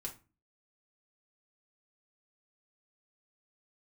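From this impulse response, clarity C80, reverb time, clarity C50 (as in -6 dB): 19.5 dB, 0.30 s, 12.5 dB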